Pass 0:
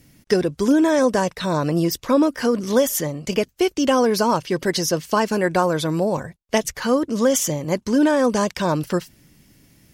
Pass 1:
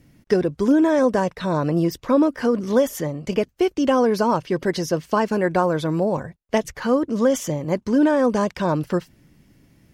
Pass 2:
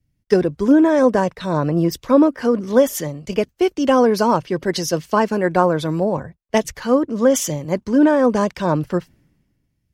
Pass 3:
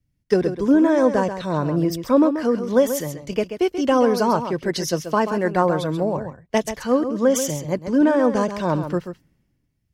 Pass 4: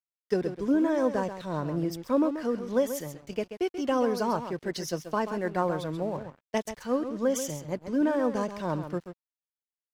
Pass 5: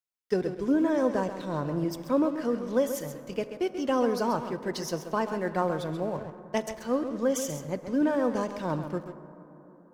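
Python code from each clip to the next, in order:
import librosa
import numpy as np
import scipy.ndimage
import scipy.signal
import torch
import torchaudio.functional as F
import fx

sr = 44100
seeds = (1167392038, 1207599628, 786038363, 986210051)

y1 = fx.high_shelf(x, sr, hz=3100.0, db=-11.5)
y2 = fx.band_widen(y1, sr, depth_pct=70)
y2 = y2 * 10.0 ** (3.0 / 20.0)
y3 = y2 + 10.0 ** (-9.5 / 20.0) * np.pad(y2, (int(134 * sr / 1000.0), 0))[:len(y2)]
y3 = y3 * 10.0 ** (-3.0 / 20.0)
y4 = np.sign(y3) * np.maximum(np.abs(y3) - 10.0 ** (-42.5 / 20.0), 0.0)
y4 = y4 * 10.0 ** (-8.5 / 20.0)
y5 = fx.rev_plate(y4, sr, seeds[0], rt60_s=3.9, hf_ratio=0.3, predelay_ms=0, drr_db=13.0)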